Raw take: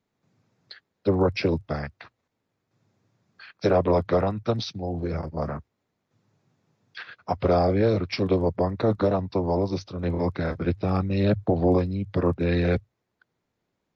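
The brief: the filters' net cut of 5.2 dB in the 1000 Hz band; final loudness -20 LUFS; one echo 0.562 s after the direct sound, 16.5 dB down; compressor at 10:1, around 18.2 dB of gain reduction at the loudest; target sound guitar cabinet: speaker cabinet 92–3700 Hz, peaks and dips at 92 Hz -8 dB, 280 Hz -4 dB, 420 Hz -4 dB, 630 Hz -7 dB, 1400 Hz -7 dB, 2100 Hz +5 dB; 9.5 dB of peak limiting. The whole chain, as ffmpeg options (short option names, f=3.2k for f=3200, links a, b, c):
-af "equalizer=f=1k:t=o:g=-3.5,acompressor=threshold=-36dB:ratio=10,alimiter=level_in=8.5dB:limit=-24dB:level=0:latency=1,volume=-8.5dB,highpass=92,equalizer=f=92:t=q:w=4:g=-8,equalizer=f=280:t=q:w=4:g=-4,equalizer=f=420:t=q:w=4:g=-4,equalizer=f=630:t=q:w=4:g=-7,equalizer=f=1.4k:t=q:w=4:g=-7,equalizer=f=2.1k:t=q:w=4:g=5,lowpass=f=3.7k:w=0.5412,lowpass=f=3.7k:w=1.3066,aecho=1:1:562:0.15,volume=26dB"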